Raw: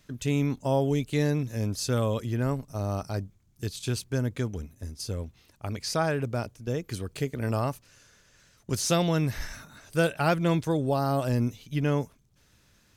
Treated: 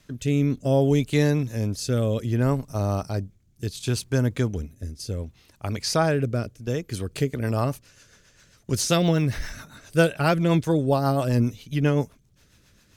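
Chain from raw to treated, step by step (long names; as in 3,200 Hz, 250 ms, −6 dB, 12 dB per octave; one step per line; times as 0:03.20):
rotating-speaker cabinet horn 0.65 Hz, later 7.5 Hz, at 0:06.41
0:08.97–0:09.52: linearly interpolated sample-rate reduction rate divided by 2×
level +6 dB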